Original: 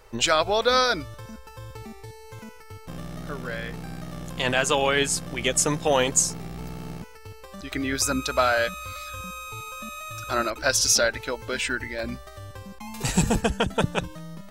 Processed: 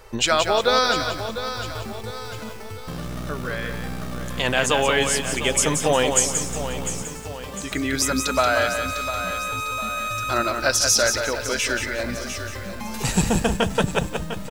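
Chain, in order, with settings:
repeating echo 701 ms, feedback 40%, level −13 dB
in parallel at −1 dB: downward compressor, threshold −33 dBFS, peak gain reduction 16.5 dB
on the sum: feedback echo at a low word length 179 ms, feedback 35%, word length 7 bits, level −6 dB

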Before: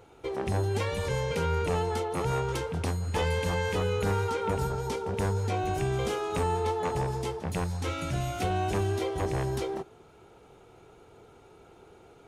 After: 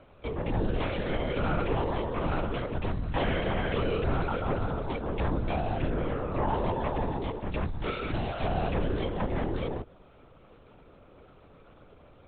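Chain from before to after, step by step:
linear-prediction vocoder at 8 kHz whisper
0:05.90–0:06.48: low-pass filter 2,000 Hz 12 dB per octave

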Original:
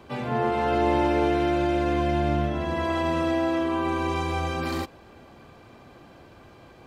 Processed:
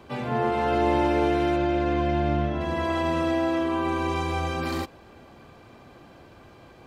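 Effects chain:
0:01.56–0:02.61: high-frequency loss of the air 84 metres

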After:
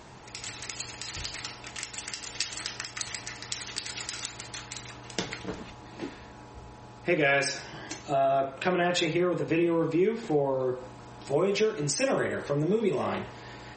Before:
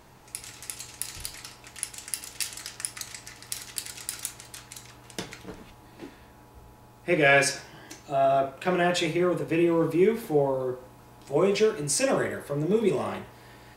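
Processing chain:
high-pass filter 51 Hz 6 dB per octave
downward compressor 2.5 to 1, threshold −32 dBFS, peak gain reduction 11.5 dB
level +6 dB
MP3 32 kbit/s 48,000 Hz

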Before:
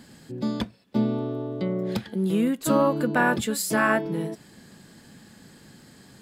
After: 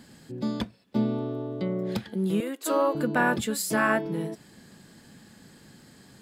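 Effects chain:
0:02.40–0:02.95: Butterworth high-pass 300 Hz 48 dB per octave
level −2 dB

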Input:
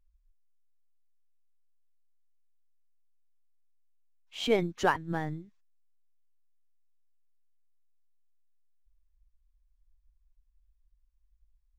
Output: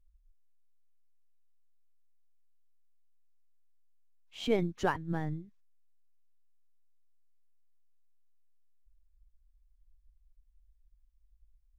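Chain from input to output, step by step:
low-shelf EQ 290 Hz +9 dB
level −6 dB

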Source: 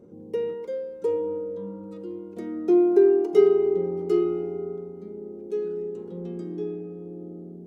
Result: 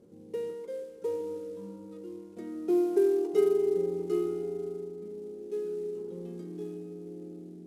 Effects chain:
variable-slope delta modulation 64 kbit/s
feedback echo with a band-pass in the loop 160 ms, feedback 82%, band-pass 350 Hz, level −15.5 dB
level −7 dB

